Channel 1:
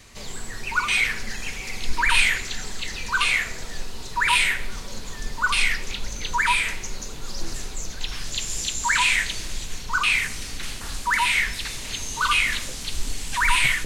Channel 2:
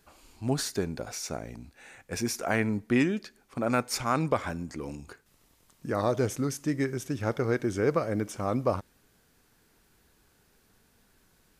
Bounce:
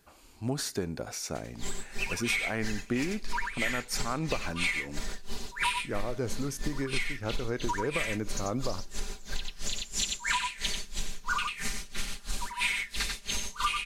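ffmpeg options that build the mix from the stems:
ffmpeg -i stem1.wav -i stem2.wav -filter_complex "[0:a]aecho=1:1:5:0.84,aeval=exprs='val(0)*pow(10,-31*(0.5-0.5*cos(2*PI*3*n/s))/20)':channel_layout=same,adelay=1350,volume=1dB,asplit=2[link_01][link_02];[link_02]volume=-5.5dB[link_03];[1:a]acontrast=70,volume=-7dB[link_04];[link_03]aecho=0:1:90:1[link_05];[link_01][link_04][link_05]amix=inputs=3:normalize=0,acompressor=threshold=-26dB:ratio=12" out.wav

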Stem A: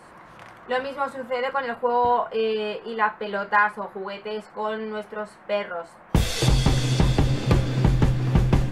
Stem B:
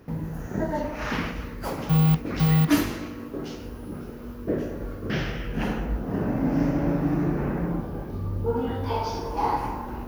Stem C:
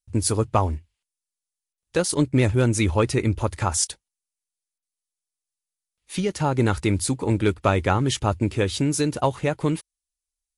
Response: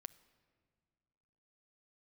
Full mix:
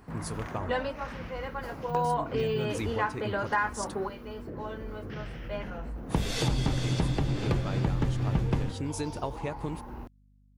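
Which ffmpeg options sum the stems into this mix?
-filter_complex "[0:a]volume=1dB,asplit=2[link_01][link_02];[link_02]volume=-13dB[link_03];[1:a]acrossover=split=140[link_04][link_05];[link_05]acompressor=threshold=-36dB:ratio=3[link_06];[link_04][link_06]amix=inputs=2:normalize=0,alimiter=level_in=2dB:limit=-24dB:level=0:latency=1:release=14,volume=-2dB,volume=-5.5dB[link_07];[2:a]dynaudnorm=framelen=190:gausssize=11:maxgain=7.5dB,volume=-14.5dB,asplit=2[link_08][link_09];[link_09]apad=whole_len=384504[link_10];[link_01][link_10]sidechaingate=range=-19dB:threshold=-58dB:ratio=16:detection=peak[link_11];[link_11][link_08]amix=inputs=2:normalize=0,acompressor=threshold=-29dB:ratio=5,volume=0dB[link_12];[3:a]atrim=start_sample=2205[link_13];[link_03][link_13]afir=irnorm=-1:irlink=0[link_14];[link_07][link_12][link_14]amix=inputs=3:normalize=0,aeval=exprs='val(0)+0.001*(sin(2*PI*50*n/s)+sin(2*PI*2*50*n/s)/2+sin(2*PI*3*50*n/s)/3+sin(2*PI*4*50*n/s)/4+sin(2*PI*5*50*n/s)/5)':channel_layout=same,highshelf=frequency=8600:gain=-5.5"

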